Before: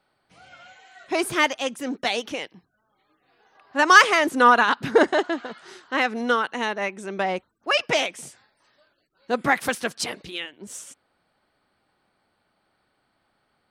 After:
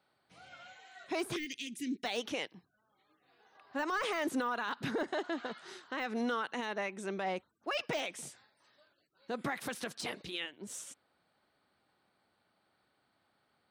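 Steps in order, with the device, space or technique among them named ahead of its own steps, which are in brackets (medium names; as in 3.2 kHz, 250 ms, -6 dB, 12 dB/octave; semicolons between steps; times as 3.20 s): broadcast voice chain (high-pass 70 Hz; de-esser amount 65%; compression 5:1, threshold -21 dBFS, peak gain reduction 9.5 dB; peaking EQ 3.8 kHz +3.5 dB 0.24 oct; peak limiter -20.5 dBFS, peak gain reduction 9 dB); 1.36–2.04 s: elliptic band-stop 360–2100 Hz, stop band 40 dB; trim -5.5 dB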